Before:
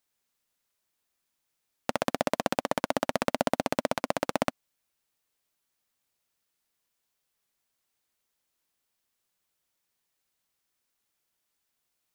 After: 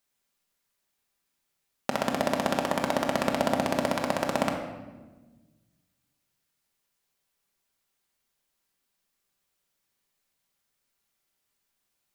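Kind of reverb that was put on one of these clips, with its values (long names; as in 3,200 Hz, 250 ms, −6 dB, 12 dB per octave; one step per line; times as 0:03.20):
rectangular room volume 840 cubic metres, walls mixed, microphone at 1.2 metres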